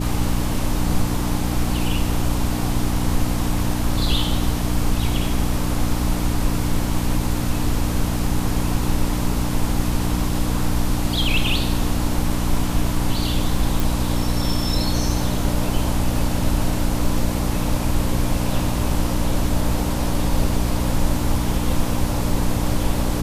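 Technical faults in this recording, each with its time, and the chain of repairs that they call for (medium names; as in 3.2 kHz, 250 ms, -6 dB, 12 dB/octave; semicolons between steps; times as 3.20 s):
hum 60 Hz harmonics 5 -24 dBFS
13.80 s: pop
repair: de-click; de-hum 60 Hz, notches 5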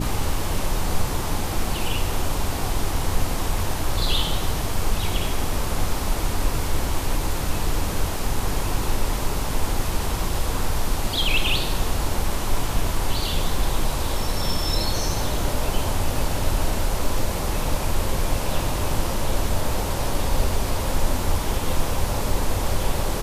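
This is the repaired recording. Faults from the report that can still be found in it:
nothing left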